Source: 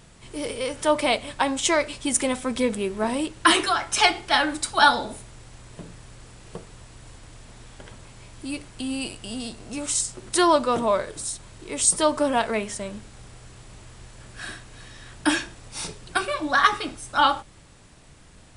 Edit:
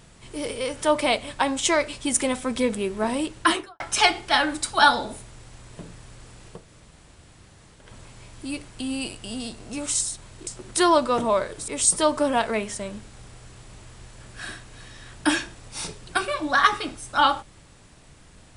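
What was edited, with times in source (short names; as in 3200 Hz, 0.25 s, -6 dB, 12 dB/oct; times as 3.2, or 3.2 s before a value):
3.36–3.8 studio fade out
6.58–7.85 room tone, crossfade 0.24 s
11.26–11.68 move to 10.05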